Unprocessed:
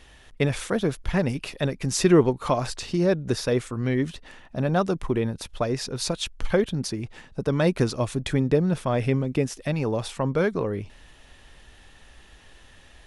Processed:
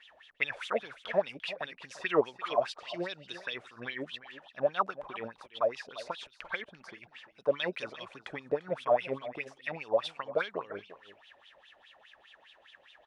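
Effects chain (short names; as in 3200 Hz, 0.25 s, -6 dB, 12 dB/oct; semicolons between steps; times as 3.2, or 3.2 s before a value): wah 4.9 Hz 570–3500 Hz, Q 6.7; on a send: echo 0.345 s -15.5 dB; on the sum: gain +7 dB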